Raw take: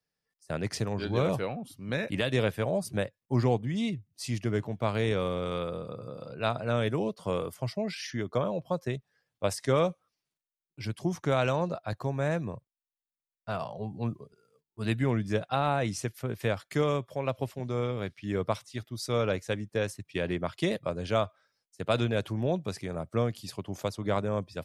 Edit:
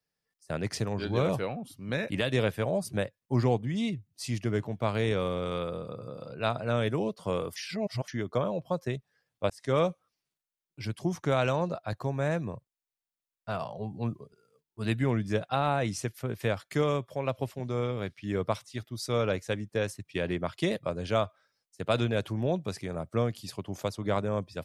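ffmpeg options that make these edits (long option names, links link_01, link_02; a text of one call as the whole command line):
ffmpeg -i in.wav -filter_complex "[0:a]asplit=4[link_01][link_02][link_03][link_04];[link_01]atrim=end=7.562[link_05];[link_02]atrim=start=7.558:end=8.082,asetpts=PTS-STARTPTS,areverse[link_06];[link_03]atrim=start=8.078:end=9.5,asetpts=PTS-STARTPTS,afade=type=out:start_time=1.418:duration=0.004:curve=hsin[link_07];[link_04]atrim=start=9.5,asetpts=PTS-STARTPTS,afade=type=in:duration=0.28[link_08];[link_05][link_06]acrossfade=duration=0.004:curve1=hsin:curve2=hsin[link_09];[link_07][link_08]concat=n=2:v=0:a=1[link_10];[link_09][link_10]acrossfade=duration=0.004:curve1=hsin:curve2=hsin" out.wav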